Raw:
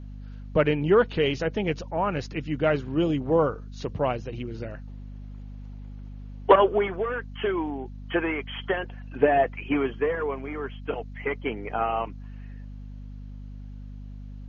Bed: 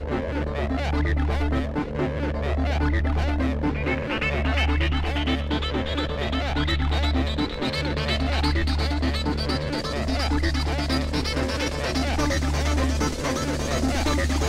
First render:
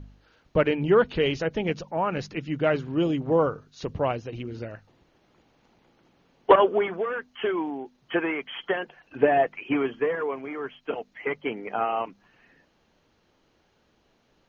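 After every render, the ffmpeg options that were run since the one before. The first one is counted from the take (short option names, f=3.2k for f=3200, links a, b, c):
-af "bandreject=f=50:t=h:w=4,bandreject=f=100:t=h:w=4,bandreject=f=150:t=h:w=4,bandreject=f=200:t=h:w=4,bandreject=f=250:t=h:w=4"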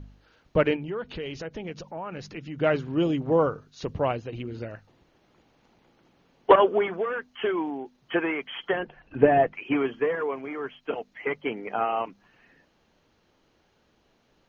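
-filter_complex "[0:a]asettb=1/sr,asplit=3[a][b][c];[a]atrim=end=0.764[d];[b]atrim=start=0.76:end=2.58,asetpts=PTS-STARTPTS,afade=t=in:d=0.004:c=qsin,afade=t=out:st=1.816:d=0.004:c=qsin,acompressor=threshold=-36dB:ratio=2.5:attack=3.2:release=140:knee=1:detection=peak[e];[c]atrim=start=2.576[f];[d][e]acrossfade=d=0.004:c1=hsin:c2=qsin[g];[g][f]acrossfade=d=0.004:c1=qsin:c2=hsin,asettb=1/sr,asplit=3[h][i][j];[h]atrim=end=4.104[k];[i]atrim=start=4.1:end=4.61,asetpts=PTS-STARTPTS,afade=t=in:d=0.004:c=qsin,afade=t=out:st=0.506:d=0.004:c=qsin,equalizer=f=5.6k:w=7.3:g=-12.5[l];[j]atrim=start=4.606[m];[k][l]acrossfade=d=0.004:c1=hsin:c2=qsin[n];[n][m]acrossfade=d=0.004:c1=qsin:c2=hsin,asettb=1/sr,asplit=3[o][p][q];[o]atrim=end=8.734[r];[p]atrim=start=8.73:end=9.53,asetpts=PTS-STARTPTS,afade=t=in:d=0.004:c=qsin,afade=t=out:st=0.796:d=0.004:c=qsin,aemphasis=mode=reproduction:type=bsi[s];[q]atrim=start=9.526[t];[r][s]acrossfade=d=0.004:c1=hsin:c2=qsin[u];[u][t]acrossfade=d=0.004:c1=qsin:c2=hsin"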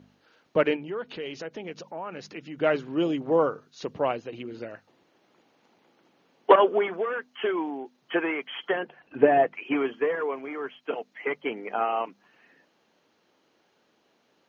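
-af "highpass=230"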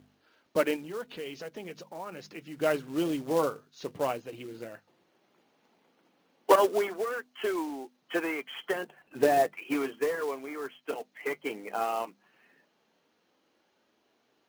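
-af "flanger=delay=2.6:depth=4.9:regen=-63:speed=0.14:shape=triangular,acrusher=bits=4:mode=log:mix=0:aa=0.000001"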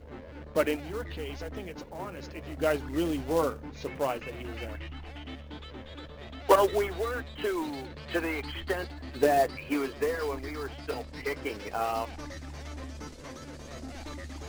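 -filter_complex "[1:a]volume=-18dB[a];[0:a][a]amix=inputs=2:normalize=0"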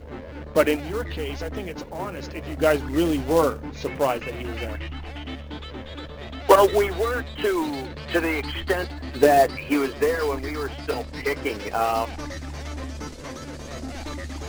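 -af "volume=7.5dB,alimiter=limit=-2dB:level=0:latency=1"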